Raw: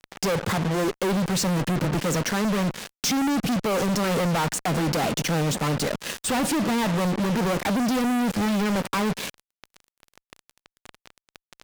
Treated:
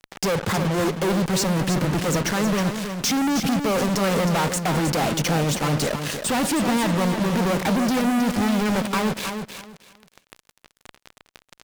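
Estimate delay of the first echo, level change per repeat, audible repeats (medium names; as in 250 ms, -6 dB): 316 ms, -13.0 dB, 3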